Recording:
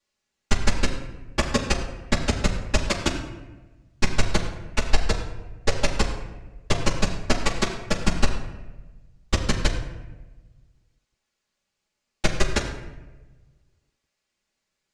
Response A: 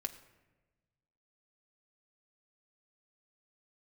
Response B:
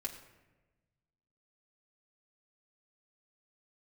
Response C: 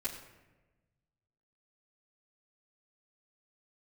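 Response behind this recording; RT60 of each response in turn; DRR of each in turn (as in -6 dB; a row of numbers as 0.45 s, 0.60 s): C; 1.2 s, 1.2 s, 1.2 s; 4.5 dB, -2.0 dB, -10.5 dB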